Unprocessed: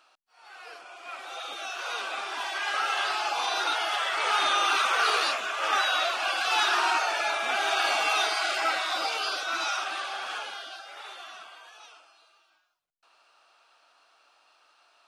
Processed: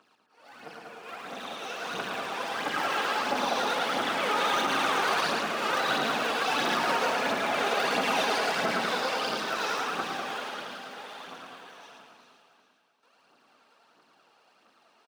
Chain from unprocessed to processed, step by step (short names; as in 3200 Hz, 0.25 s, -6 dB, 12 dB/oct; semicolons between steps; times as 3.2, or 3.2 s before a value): cycle switcher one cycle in 3, muted; HPF 150 Hz 24 dB/oct; tilt shelf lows +4.5 dB, about 770 Hz; phaser 1.5 Hz, delay 2.5 ms, feedback 62%; echo 0.11 s -4.5 dB; limiter -16.5 dBFS, peak gain reduction 8 dB; echo with dull and thin repeats by turns 0.198 s, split 2400 Hz, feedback 60%, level -5 dB; gain -1 dB